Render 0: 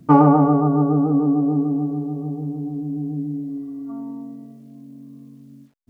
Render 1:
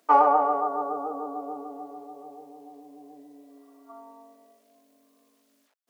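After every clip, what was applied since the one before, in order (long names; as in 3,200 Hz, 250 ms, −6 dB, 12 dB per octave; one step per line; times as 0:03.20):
high-pass filter 550 Hz 24 dB per octave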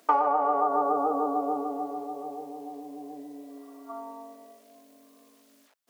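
downward compressor 12 to 1, threshold −27 dBFS, peak gain reduction 14.5 dB
level +7 dB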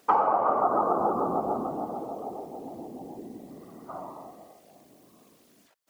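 random phases in short frames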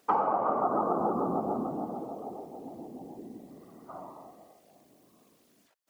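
dynamic equaliser 200 Hz, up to +7 dB, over −43 dBFS, Q 0.75
level −5 dB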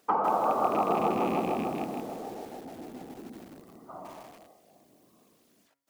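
loose part that buzzes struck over −36 dBFS, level −30 dBFS
hum removal 138.4 Hz, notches 18
feedback echo at a low word length 159 ms, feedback 35%, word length 8 bits, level −3.5 dB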